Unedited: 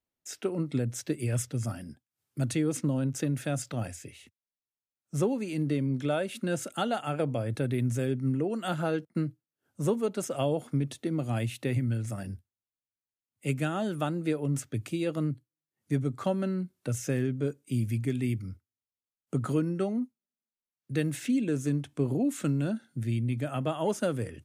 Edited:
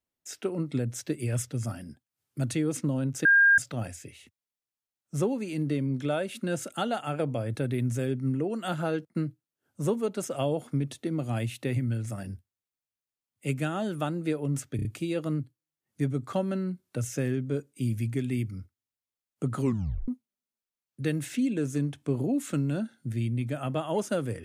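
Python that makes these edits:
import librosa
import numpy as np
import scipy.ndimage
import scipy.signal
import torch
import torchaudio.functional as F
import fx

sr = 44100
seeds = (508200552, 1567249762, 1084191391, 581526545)

y = fx.edit(x, sr, fx.bleep(start_s=3.25, length_s=0.33, hz=1610.0, db=-15.5),
    fx.stutter(start_s=14.76, slice_s=0.03, count=4),
    fx.tape_stop(start_s=19.51, length_s=0.48), tone=tone)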